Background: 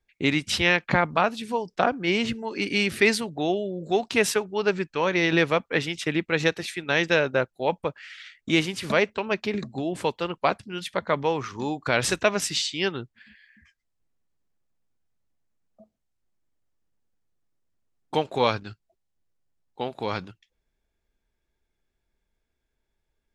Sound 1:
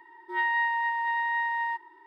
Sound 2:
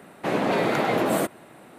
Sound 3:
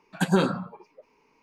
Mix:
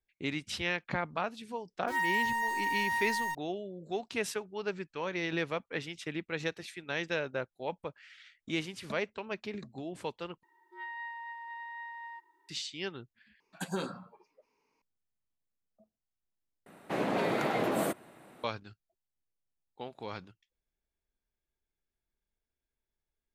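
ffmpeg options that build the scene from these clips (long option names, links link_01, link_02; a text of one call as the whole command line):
ffmpeg -i bed.wav -i cue0.wav -i cue1.wav -i cue2.wav -filter_complex "[1:a]asplit=2[link_01][link_02];[0:a]volume=-12dB[link_03];[link_01]aeval=exprs='val(0)*gte(abs(val(0)),0.0168)':channel_layout=same[link_04];[link_02]acrusher=bits=11:mix=0:aa=0.000001[link_05];[3:a]bass=frequency=250:gain=-4,treble=frequency=4000:gain=6[link_06];[link_03]asplit=4[link_07][link_08][link_09][link_10];[link_07]atrim=end=10.434[link_11];[link_05]atrim=end=2.06,asetpts=PTS-STARTPTS,volume=-15.5dB[link_12];[link_08]atrim=start=12.486:end=13.404[link_13];[link_06]atrim=end=1.42,asetpts=PTS-STARTPTS,volume=-12.5dB[link_14];[link_09]atrim=start=14.816:end=16.664[link_15];[2:a]atrim=end=1.78,asetpts=PTS-STARTPTS,volume=-7.5dB[link_16];[link_10]atrim=start=18.436[link_17];[link_04]atrim=end=2.06,asetpts=PTS-STARTPTS,volume=-4dB,afade=type=in:duration=0.004:curve=hsin,afade=type=out:start_time=2.056:duration=0.004:curve=hsin,adelay=1580[link_18];[link_11][link_12]acrossfade=duration=0.004:curve1=hsin:curve2=hsin[link_19];[link_19][link_13]acrossfade=duration=0.004:curve1=hsin:curve2=hsin[link_20];[link_20][link_14]acrossfade=duration=0.004:curve1=hsin:curve2=hsin[link_21];[link_21][link_15]acrossfade=duration=0.004:curve1=hsin:curve2=hsin[link_22];[link_22][link_16]acrossfade=duration=0.004:curve1=hsin:curve2=hsin[link_23];[link_23][link_17]acrossfade=duration=0.004:curve1=hsin:curve2=hsin[link_24];[link_24][link_18]amix=inputs=2:normalize=0" out.wav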